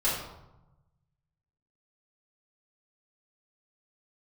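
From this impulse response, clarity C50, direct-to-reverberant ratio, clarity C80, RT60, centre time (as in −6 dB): 2.0 dB, −9.5 dB, 5.5 dB, 0.95 s, 56 ms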